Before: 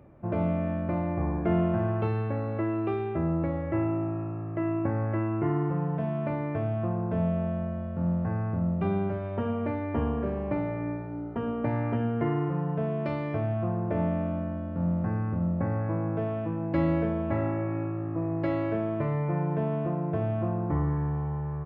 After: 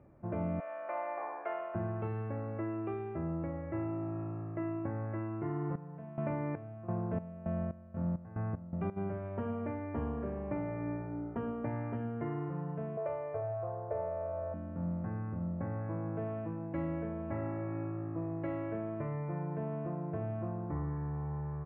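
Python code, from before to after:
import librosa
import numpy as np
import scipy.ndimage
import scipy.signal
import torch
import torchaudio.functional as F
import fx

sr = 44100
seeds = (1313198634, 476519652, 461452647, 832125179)

y = fx.highpass(x, sr, hz=600.0, slope=24, at=(0.6, 1.75))
y = fx.chopper(y, sr, hz=fx.line((5.3, 0.95), (8.96, 3.1)), depth_pct=80, duty_pct=50, at=(5.3, 8.96), fade=0.02)
y = fx.curve_eq(y, sr, hz=(120.0, 240.0, 470.0, 830.0, 4400.0), db=(0, -26, 13, 7, -8), at=(12.97, 14.54))
y = scipy.signal.sosfilt(scipy.signal.butter(4, 2500.0, 'lowpass', fs=sr, output='sos'), y)
y = fx.rider(y, sr, range_db=10, speed_s=0.5)
y = y * 10.0 ** (-8.5 / 20.0)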